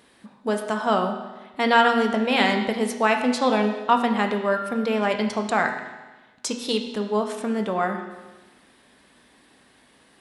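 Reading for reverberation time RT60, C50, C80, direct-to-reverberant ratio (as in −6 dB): 1.2 s, 6.5 dB, 8.5 dB, 4.0 dB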